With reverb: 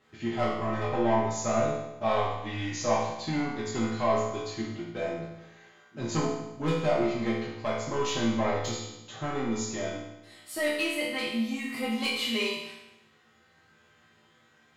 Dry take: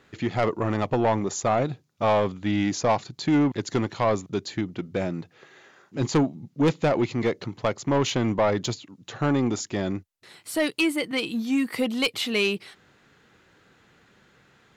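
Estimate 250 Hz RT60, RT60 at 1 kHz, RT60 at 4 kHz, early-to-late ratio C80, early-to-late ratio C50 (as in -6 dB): 0.95 s, 0.95 s, 0.90 s, 4.0 dB, 1.0 dB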